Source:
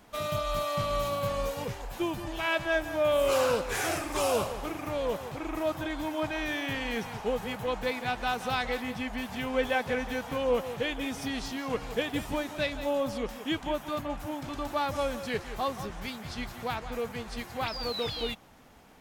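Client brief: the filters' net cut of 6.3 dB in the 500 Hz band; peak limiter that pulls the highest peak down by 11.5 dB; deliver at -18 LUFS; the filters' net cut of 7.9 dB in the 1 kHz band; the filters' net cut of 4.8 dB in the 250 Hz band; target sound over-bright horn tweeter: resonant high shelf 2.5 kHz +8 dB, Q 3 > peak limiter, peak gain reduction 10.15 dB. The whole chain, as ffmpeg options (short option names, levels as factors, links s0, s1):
-af "equalizer=f=250:t=o:g=-4,equalizer=f=500:t=o:g=-4,equalizer=f=1000:t=o:g=-7,alimiter=level_in=2:limit=0.0631:level=0:latency=1,volume=0.501,highshelf=f=2500:t=q:w=3:g=8,volume=8.41,alimiter=limit=0.299:level=0:latency=1"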